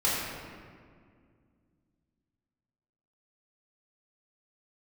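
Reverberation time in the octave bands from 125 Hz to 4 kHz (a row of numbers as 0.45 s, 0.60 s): 3.1 s, 3.1 s, 2.2 s, 1.9 s, 1.7 s, 1.2 s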